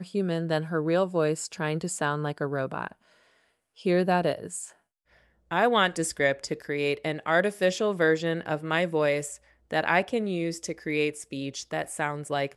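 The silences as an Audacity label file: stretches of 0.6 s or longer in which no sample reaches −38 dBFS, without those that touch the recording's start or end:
2.920000	3.810000	silence
4.680000	5.510000	silence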